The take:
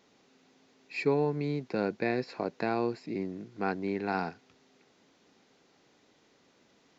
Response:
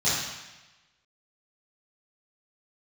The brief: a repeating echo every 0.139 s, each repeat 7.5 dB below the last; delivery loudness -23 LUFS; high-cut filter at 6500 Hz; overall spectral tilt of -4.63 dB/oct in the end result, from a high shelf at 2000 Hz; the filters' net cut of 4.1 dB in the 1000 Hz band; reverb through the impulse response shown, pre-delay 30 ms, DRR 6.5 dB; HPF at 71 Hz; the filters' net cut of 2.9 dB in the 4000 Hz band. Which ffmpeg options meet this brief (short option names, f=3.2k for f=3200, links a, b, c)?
-filter_complex "[0:a]highpass=71,lowpass=6.5k,equalizer=f=1k:t=o:g=-7,highshelf=f=2k:g=5,equalizer=f=4k:t=o:g=-7,aecho=1:1:139|278|417|556|695:0.422|0.177|0.0744|0.0312|0.0131,asplit=2[a][b];[1:a]atrim=start_sample=2205,adelay=30[c];[b][c]afir=irnorm=-1:irlink=0,volume=-20dB[d];[a][d]amix=inputs=2:normalize=0,volume=8.5dB"